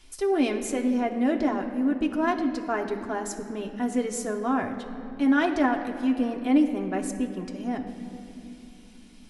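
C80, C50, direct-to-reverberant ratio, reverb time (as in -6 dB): 9.5 dB, 8.5 dB, 2.0 dB, 2.8 s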